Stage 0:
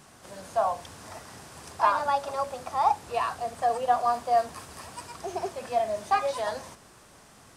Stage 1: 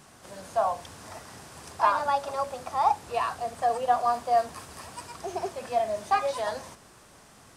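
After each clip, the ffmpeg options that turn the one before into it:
ffmpeg -i in.wav -af anull out.wav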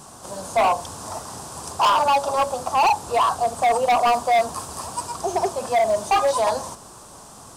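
ffmpeg -i in.wav -af "equalizer=frequency=1000:width_type=o:width=1:gain=7,equalizer=frequency=2000:width_type=o:width=1:gain=-12,equalizer=frequency=8000:width_type=o:width=1:gain=6,asoftclip=type=hard:threshold=-23dB,volume=8.5dB" out.wav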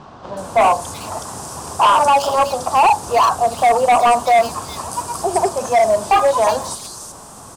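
ffmpeg -i in.wav -filter_complex "[0:a]acrossover=split=3800[link_01][link_02];[link_02]adelay=370[link_03];[link_01][link_03]amix=inputs=2:normalize=0,volume=5.5dB" out.wav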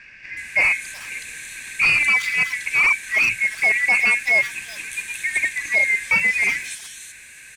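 ffmpeg -i in.wav -af "afftfilt=real='real(if(lt(b,272),68*(eq(floor(b/68),0)*1+eq(floor(b/68),1)*0+eq(floor(b/68),2)*3+eq(floor(b/68),3)*2)+mod(b,68),b),0)':imag='imag(if(lt(b,272),68*(eq(floor(b/68),0)*1+eq(floor(b/68),1)*0+eq(floor(b/68),2)*3+eq(floor(b/68),3)*2)+mod(b,68),b),0)':win_size=2048:overlap=0.75,volume=-5dB" out.wav

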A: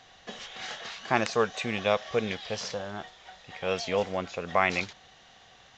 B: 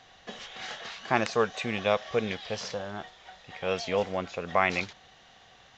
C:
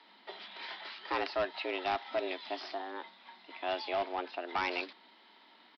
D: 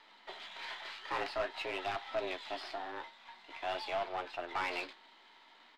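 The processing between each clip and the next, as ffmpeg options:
ffmpeg -i in.wav -af "highshelf=frequency=6500:gain=-5" out.wav
ffmpeg -i in.wav -af "afreqshift=180,aresample=11025,volume=22dB,asoftclip=hard,volume=-22dB,aresample=44100,volume=-4.5dB" out.wav
ffmpeg -i in.wav -filter_complex "[0:a]aeval=exprs='if(lt(val(0),0),0.447*val(0),val(0))':channel_layout=same,asplit=2[link_01][link_02];[link_02]highpass=frequency=720:poles=1,volume=12dB,asoftclip=type=tanh:threshold=-23dB[link_03];[link_01][link_03]amix=inputs=2:normalize=0,lowpass=frequency=3600:poles=1,volume=-6dB,flanger=delay=9:depth=9.5:regen=-42:speed=0.49:shape=sinusoidal,volume=1dB" out.wav

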